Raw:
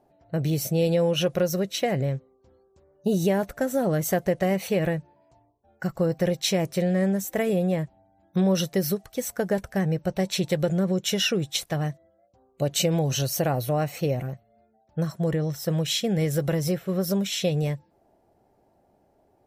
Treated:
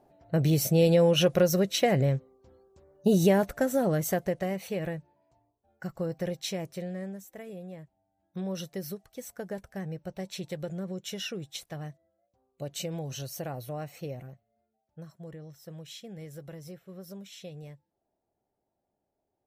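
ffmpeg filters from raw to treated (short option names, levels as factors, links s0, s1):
-af "volume=2.37,afade=t=out:st=3.28:d=1.26:silence=0.334965,afade=t=out:st=6.31:d=1.01:silence=0.316228,afade=t=in:st=7.83:d=0.73:silence=0.473151,afade=t=out:st=14:d=1.08:silence=0.446684"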